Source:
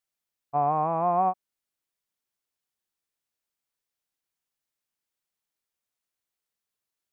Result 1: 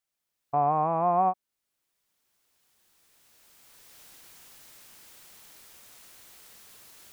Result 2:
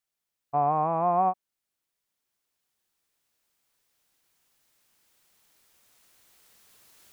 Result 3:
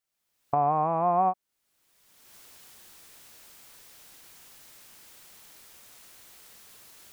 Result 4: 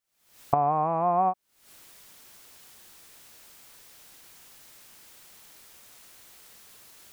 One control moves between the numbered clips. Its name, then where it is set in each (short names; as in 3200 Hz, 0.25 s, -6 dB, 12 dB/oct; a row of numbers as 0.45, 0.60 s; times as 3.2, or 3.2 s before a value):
recorder AGC, rising by: 13, 5.2, 33, 87 dB/s